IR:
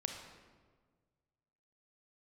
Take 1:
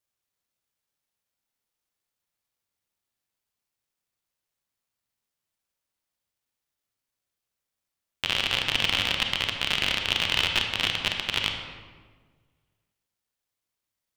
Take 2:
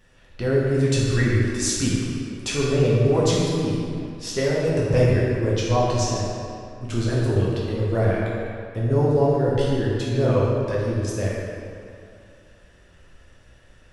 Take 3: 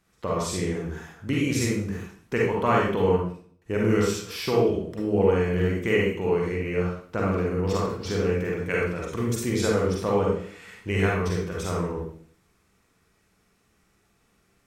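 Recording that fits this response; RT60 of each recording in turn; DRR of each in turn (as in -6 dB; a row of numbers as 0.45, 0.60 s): 1; 1.6, 2.4, 0.50 s; 3.5, -6.5, -3.5 dB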